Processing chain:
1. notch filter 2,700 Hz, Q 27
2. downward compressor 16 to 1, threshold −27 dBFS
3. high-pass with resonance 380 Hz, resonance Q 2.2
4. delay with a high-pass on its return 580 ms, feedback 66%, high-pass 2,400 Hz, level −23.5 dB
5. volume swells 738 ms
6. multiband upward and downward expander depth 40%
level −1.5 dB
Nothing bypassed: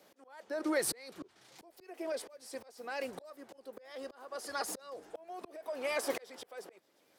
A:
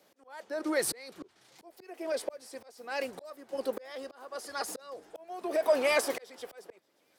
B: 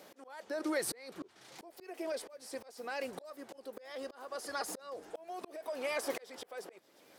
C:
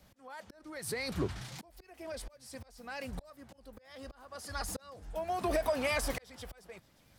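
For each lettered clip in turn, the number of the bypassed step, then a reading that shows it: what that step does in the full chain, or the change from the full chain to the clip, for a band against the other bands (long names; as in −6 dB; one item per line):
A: 2, average gain reduction 2.5 dB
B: 6, 8 kHz band −1.5 dB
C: 3, 125 Hz band +18.0 dB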